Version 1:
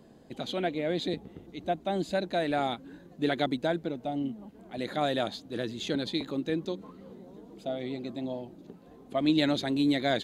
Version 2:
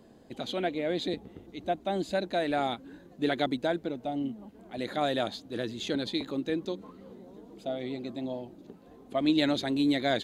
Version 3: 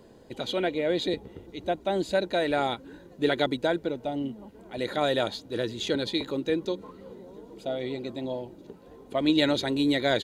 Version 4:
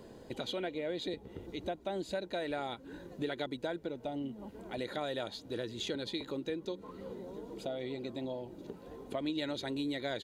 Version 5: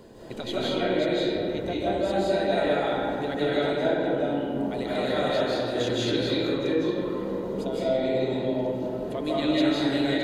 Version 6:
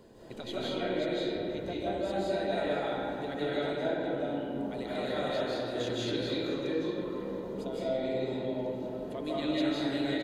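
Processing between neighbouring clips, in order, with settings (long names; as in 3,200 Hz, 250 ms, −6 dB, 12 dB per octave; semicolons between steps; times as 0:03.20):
parametric band 160 Hz −5.5 dB 0.32 octaves
comb filter 2.1 ms, depth 35%; level +3.5 dB
downward compressor 3 to 1, threshold −39 dBFS, peak gain reduction 15 dB; level +1 dB
comb and all-pass reverb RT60 2.9 s, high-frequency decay 0.4×, pre-delay 120 ms, DRR −9 dB; level +3 dB
single-tap delay 503 ms −16 dB; level −7 dB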